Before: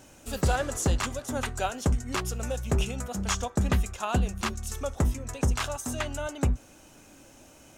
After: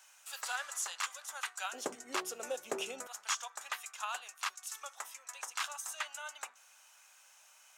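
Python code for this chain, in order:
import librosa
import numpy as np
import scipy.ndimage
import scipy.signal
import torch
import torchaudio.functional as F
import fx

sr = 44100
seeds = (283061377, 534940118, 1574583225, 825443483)

y = fx.highpass(x, sr, hz=fx.steps((0.0, 990.0), (1.73, 350.0), (3.07, 950.0)), slope=24)
y = y * 10.0 ** (-4.5 / 20.0)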